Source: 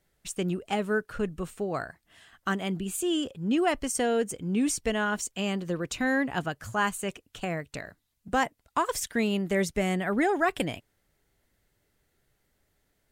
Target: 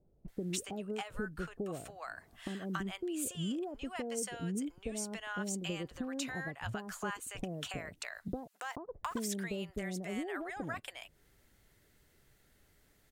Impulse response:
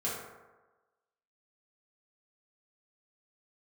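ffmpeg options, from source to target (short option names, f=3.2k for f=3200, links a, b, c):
-filter_complex "[0:a]asettb=1/sr,asplit=3[a][b][c];[a]atrim=end=8.324[d];[b]atrim=start=8.32:end=8.92,asetpts=PTS-STARTPTS,afade=t=in:d=0.004:c=qsin,afade=t=out:st=0.596:d=0.004:c=qsin,aeval=exprs='val(0)*gte(abs(val(0)),0.00841)':c=same[e];[c]atrim=start=8.916[f];[d][e]acrossfade=d=0.004:c1=hsin:c2=qsin[g];[g][f]acrossfade=d=0.004:c1=qsin:c2=hsin,acompressor=threshold=-40dB:ratio=10,acrossover=split=690[h][i];[i]adelay=280[j];[h][j]amix=inputs=2:normalize=0,volume=5dB"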